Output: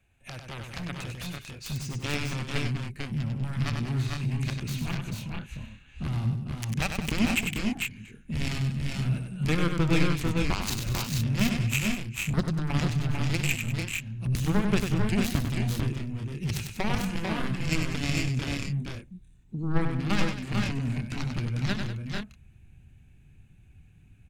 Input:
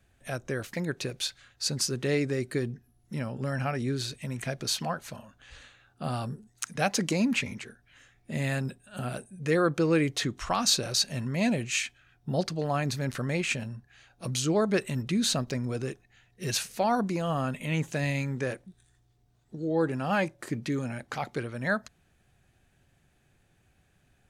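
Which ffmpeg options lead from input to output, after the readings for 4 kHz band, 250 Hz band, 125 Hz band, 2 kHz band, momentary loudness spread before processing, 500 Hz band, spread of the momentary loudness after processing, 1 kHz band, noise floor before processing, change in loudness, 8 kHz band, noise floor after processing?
−2.5 dB, +1.0 dB, +5.5 dB, +1.0 dB, 12 LU, −6.5 dB, 11 LU, −4.0 dB, −67 dBFS, +0.5 dB, −4.5 dB, −55 dBFS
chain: -filter_complex "[0:a]acrossover=split=8300[link_01][link_02];[link_02]acompressor=threshold=-55dB:ratio=4:attack=1:release=60[link_03];[link_01][link_03]amix=inputs=2:normalize=0,superequalizer=9b=1.41:12b=2.51:14b=0.562,aeval=exprs='0.398*(cos(1*acos(clip(val(0)/0.398,-1,1)))-cos(1*PI/2))+0.0708*(cos(7*acos(clip(val(0)/0.398,-1,1)))-cos(7*PI/2))':channel_layout=same,acompressor=threshold=-35dB:ratio=2.5,asoftclip=type=hard:threshold=-23dB,asubboost=boost=8:cutoff=210,aecho=1:1:62|97|194|445|473:0.106|0.501|0.224|0.596|0.447,volume=7dB"

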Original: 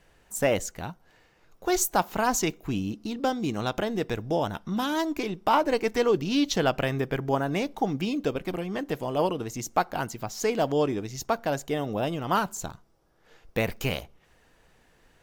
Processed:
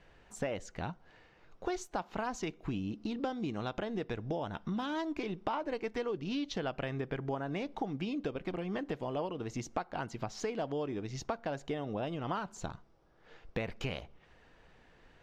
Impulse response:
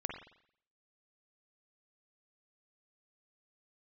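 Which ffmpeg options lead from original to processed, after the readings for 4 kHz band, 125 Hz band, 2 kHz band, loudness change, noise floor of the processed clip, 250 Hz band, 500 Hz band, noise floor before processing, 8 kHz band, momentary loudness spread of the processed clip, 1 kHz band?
−11.0 dB, −7.5 dB, −10.0 dB, −10.0 dB, −63 dBFS, −8.5 dB, −10.0 dB, −62 dBFS, −17.0 dB, 4 LU, −11.0 dB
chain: -af "acompressor=threshold=-33dB:ratio=6,lowpass=4100"

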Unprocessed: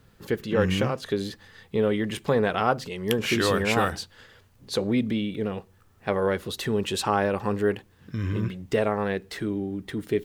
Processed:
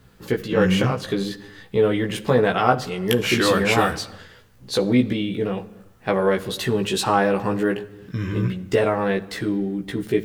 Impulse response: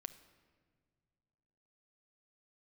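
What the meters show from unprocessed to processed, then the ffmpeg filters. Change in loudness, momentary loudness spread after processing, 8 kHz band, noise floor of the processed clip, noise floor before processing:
+4.5 dB, 10 LU, +4.5 dB, −50 dBFS, −58 dBFS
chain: -filter_complex "[0:a]asplit=2[link_01][link_02];[1:a]atrim=start_sample=2205,afade=type=out:start_time=0.42:duration=0.01,atrim=end_sample=18963,adelay=16[link_03];[link_02][link_03]afir=irnorm=-1:irlink=0,volume=1.5dB[link_04];[link_01][link_04]amix=inputs=2:normalize=0,volume=3dB"

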